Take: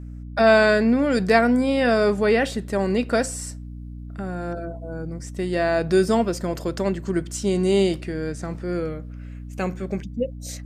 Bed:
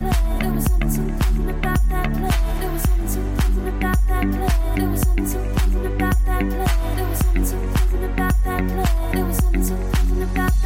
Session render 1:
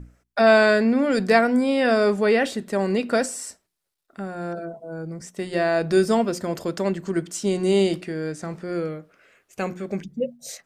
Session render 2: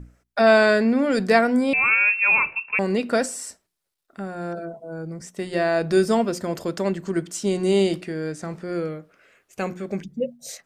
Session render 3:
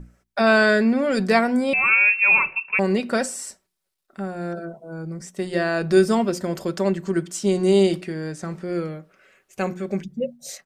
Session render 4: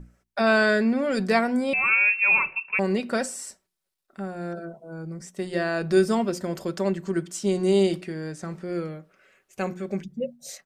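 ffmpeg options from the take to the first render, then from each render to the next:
-af "bandreject=f=60:t=h:w=6,bandreject=f=120:t=h:w=6,bandreject=f=180:t=h:w=6,bandreject=f=240:t=h:w=6,bandreject=f=300:t=h:w=6,bandreject=f=360:t=h:w=6"
-filter_complex "[0:a]asettb=1/sr,asplit=3[s0][s1][s2];[s0]atrim=end=1.734[s3];[s1]atrim=start=1.73:end=2.79,asetpts=PTS-STARTPTS,afade=t=in:d=0.004:c=qsin,afade=t=out:st=1.056:d=0.004:c=qsin,lowpass=f=2500:t=q:w=0.5098,lowpass=f=2500:t=q:w=0.6013,lowpass=f=2500:t=q:w=0.9,lowpass=f=2500:t=q:w=2.563,afreqshift=-2900[s4];[s2]atrim=start=2.786[s5];[s3][s4]acrossfade=d=0.004:c1=hsin:c2=qsin[s6];[s6][s5]acrossfade=d=0.004:c1=qsin:c2=hsin"
-af "aecho=1:1:5.3:0.38"
-af "volume=0.668"

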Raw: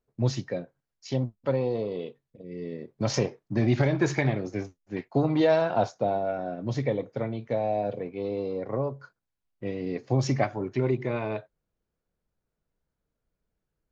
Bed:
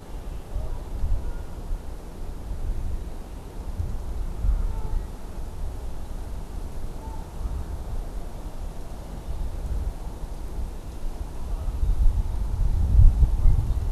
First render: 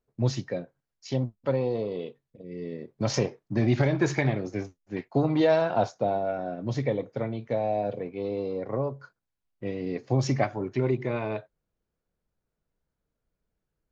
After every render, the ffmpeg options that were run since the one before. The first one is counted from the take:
-af anull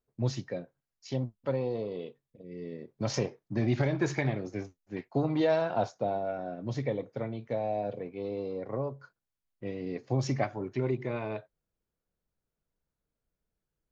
-af "volume=0.596"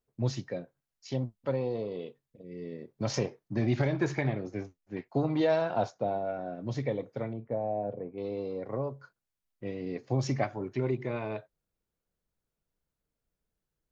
-filter_complex "[0:a]asettb=1/sr,asplit=3[s0][s1][s2];[s0]atrim=end=4.044[s3];[s1]atrim=start=4.04:end=5.09,asetpts=PTS-STARTPTS,afade=t=in:d=0.004:c=qsin,afade=t=out:st=1.046:d=0.004:c=qsin,highshelf=f=4300:g=-7[s4];[s2]atrim=start=5.086[s5];[s3][s4]acrossfade=d=0.004:c1=hsin:c2=qsin[s6];[s6][s5]acrossfade=d=0.004:c1=qsin:c2=hsin,asettb=1/sr,asplit=3[s7][s8][s9];[s7]atrim=end=5.904[s10];[s8]atrim=start=5.9:end=6.55,asetpts=PTS-STARTPTS,afade=t=in:d=0.004:c=qsin,afade=t=out:st=0.646:d=0.004:c=qsin,lowpass=f=4000:p=1[s11];[s9]atrim=start=6.546[s12];[s10][s11]acrossfade=d=0.004:c1=hsin:c2=qsin[s13];[s13][s12]acrossfade=d=0.004:c1=qsin:c2=hsin,asettb=1/sr,asplit=3[s14][s15][s16];[s14]atrim=end=7.334[s17];[s15]atrim=start=7.33:end=8.18,asetpts=PTS-STARTPTS,afade=t=in:d=0.004:c=qsin,afade=t=out:st=0.846:d=0.004:c=qsin,lowpass=1100[s18];[s16]atrim=start=8.176[s19];[s17][s18]acrossfade=d=0.004:c1=hsin:c2=qsin[s20];[s20][s19]acrossfade=d=0.004:c1=qsin:c2=hsin"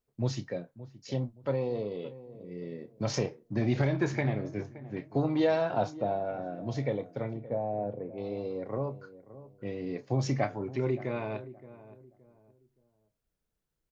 -filter_complex "[0:a]asplit=2[s0][s1];[s1]adelay=29,volume=0.237[s2];[s0][s2]amix=inputs=2:normalize=0,asplit=2[s3][s4];[s4]adelay=571,lowpass=f=970:p=1,volume=0.168,asplit=2[s5][s6];[s6]adelay=571,lowpass=f=970:p=1,volume=0.32,asplit=2[s7][s8];[s8]adelay=571,lowpass=f=970:p=1,volume=0.32[s9];[s3][s5][s7][s9]amix=inputs=4:normalize=0"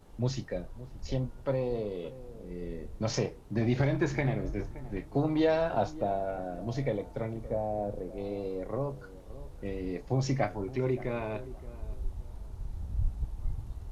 -filter_complex "[1:a]volume=0.168[s0];[0:a][s0]amix=inputs=2:normalize=0"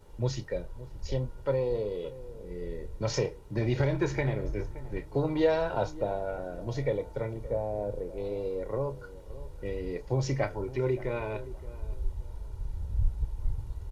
-af "aecho=1:1:2.1:0.49"

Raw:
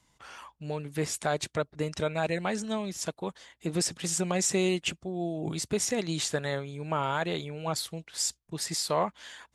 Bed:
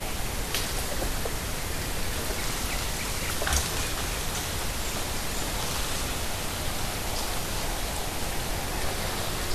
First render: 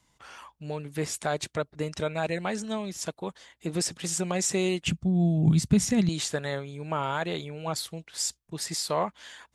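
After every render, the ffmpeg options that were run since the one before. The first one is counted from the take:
-filter_complex "[0:a]asettb=1/sr,asplit=3[s0][s1][s2];[s0]atrim=end=4.864[s3];[s1]atrim=start=4.86:end=6.09,asetpts=PTS-STARTPTS,afade=t=in:d=0.004:c=qsin,afade=t=out:st=1.226:d=0.004:c=qsin,lowshelf=f=270:t=q:w=1.5:g=12.5[s4];[s2]atrim=start=6.086[s5];[s3][s4]acrossfade=d=0.004:c1=hsin:c2=qsin[s6];[s6][s5]acrossfade=d=0.004:c1=qsin:c2=hsin"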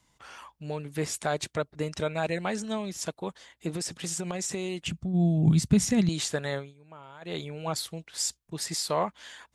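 -filter_complex "[0:a]asplit=3[s0][s1][s2];[s0]afade=t=out:st=3.73:d=0.02[s3];[s1]acompressor=threshold=0.0398:ratio=6:attack=3.2:release=140:knee=1:detection=peak,afade=t=in:st=3.73:d=0.02,afade=t=out:st=5.13:d=0.02[s4];[s2]afade=t=in:st=5.13:d=0.02[s5];[s3][s4][s5]amix=inputs=3:normalize=0,asplit=3[s6][s7][s8];[s6]atrim=end=6.74,asetpts=PTS-STARTPTS,afade=t=out:st=6.57:d=0.17:silence=0.11885[s9];[s7]atrim=start=6.74:end=7.21,asetpts=PTS-STARTPTS,volume=0.119[s10];[s8]atrim=start=7.21,asetpts=PTS-STARTPTS,afade=t=in:d=0.17:silence=0.11885[s11];[s9][s10][s11]concat=n=3:v=0:a=1"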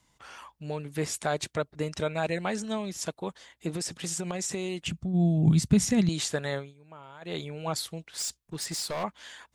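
-filter_complex "[0:a]asettb=1/sr,asplit=3[s0][s1][s2];[s0]atrim=end=8.064[s3];[s1]atrim=start=8.06:end=9.04,asetpts=PTS-STARTPTS,afade=t=in:d=0.004:c=qsin,afade=t=out:st=0.976:d=0.004:c=qsin,volume=28.2,asoftclip=hard,volume=0.0355[s4];[s2]atrim=start=9.036[s5];[s3][s4]acrossfade=d=0.004:c1=hsin:c2=qsin[s6];[s6][s5]acrossfade=d=0.004:c1=qsin:c2=hsin"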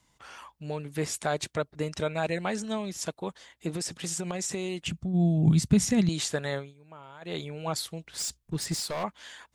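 -filter_complex "[0:a]asettb=1/sr,asplit=3[s0][s1][s2];[s0]atrim=end=8.044[s3];[s1]atrim=start=8.04:end=8.8,asetpts=PTS-STARTPTS,afade=t=in:d=0.004:c=qsin,afade=t=out:st=0.756:d=0.004:c=qsin,lowshelf=f=250:g=11[s4];[s2]atrim=start=8.796[s5];[s3][s4]acrossfade=d=0.004:c1=hsin:c2=qsin[s6];[s6][s5]acrossfade=d=0.004:c1=qsin:c2=hsin"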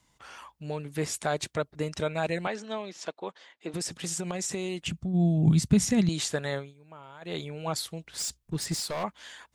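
-filter_complex "[0:a]asettb=1/sr,asplit=3[s0][s1][s2];[s0]atrim=end=2.474[s3];[s1]atrim=start=2.47:end=3.74,asetpts=PTS-STARTPTS,afade=t=in:d=0.004:c=qsin,afade=t=out:st=1.266:d=0.004:c=qsin,highpass=330,lowpass=4300[s4];[s2]atrim=start=3.736[s5];[s3][s4]acrossfade=d=0.004:c1=hsin:c2=qsin[s6];[s6][s5]acrossfade=d=0.004:c1=qsin:c2=hsin"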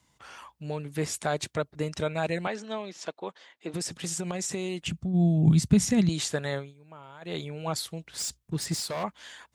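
-af "highpass=66,lowshelf=f=110:g=4.5"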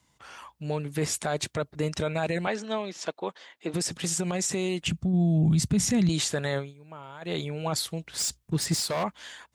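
-af "alimiter=limit=0.0891:level=0:latency=1:release=14,dynaudnorm=f=210:g=5:m=1.58"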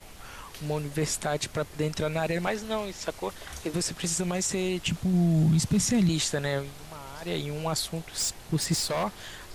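-filter_complex "[1:a]volume=0.158[s0];[0:a][s0]amix=inputs=2:normalize=0"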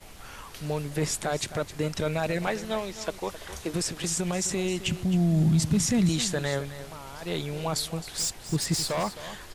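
-af "aecho=1:1:263:0.211"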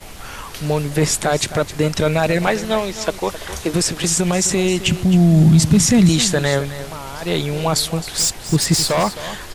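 -af "volume=3.55"

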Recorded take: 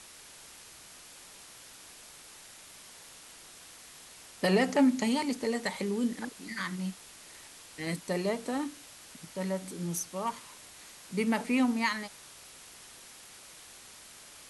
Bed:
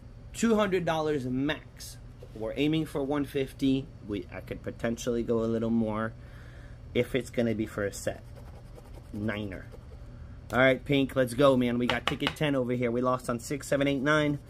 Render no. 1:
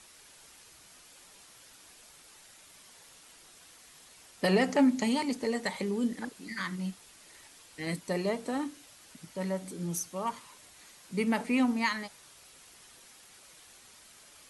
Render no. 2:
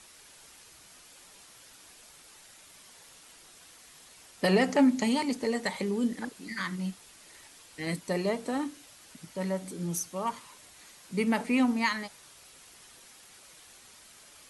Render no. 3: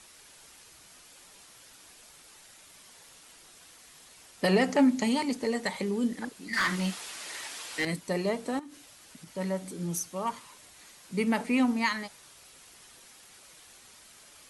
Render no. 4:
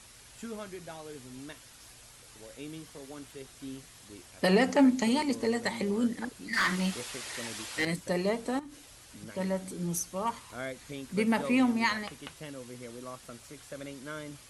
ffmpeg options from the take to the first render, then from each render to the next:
-af "afftdn=nr=6:nf=-52"
-af "volume=1.19"
-filter_complex "[0:a]asettb=1/sr,asplit=3[s0][s1][s2];[s0]atrim=end=6.534[s3];[s1]atrim=start=6.53:end=7.85,asetpts=PTS-STARTPTS,afade=t=in:d=0.004:c=qsin,afade=t=out:st=1.316:d=0.004:c=qsin,asplit=2[s4][s5];[s5]highpass=f=720:p=1,volume=11.2,asoftclip=type=tanh:threshold=0.119[s6];[s4][s6]amix=inputs=2:normalize=0,lowpass=f=5800:p=1,volume=0.501[s7];[s2]atrim=start=7.846[s8];[s3][s7]acrossfade=d=0.004:c1=hsin:c2=qsin[s9];[s9][s8]acrossfade=d=0.004:c1=qsin:c2=hsin,asettb=1/sr,asplit=3[s10][s11][s12];[s10]atrim=end=8.594[s13];[s11]atrim=start=8.59:end=9.33,asetpts=PTS-STARTPTS,afade=t=in:d=0.004:c=qsin,afade=t=out:st=0.736:d=0.004:c=qsin,acompressor=threshold=0.00891:ratio=16:attack=3.2:release=140:knee=1:detection=peak[s14];[s12]atrim=start=9.326[s15];[s13][s14]acrossfade=d=0.004:c1=hsin:c2=qsin[s16];[s16][s15]acrossfade=d=0.004:c1=qsin:c2=hsin"
-filter_complex "[1:a]volume=0.158[s0];[0:a][s0]amix=inputs=2:normalize=0"

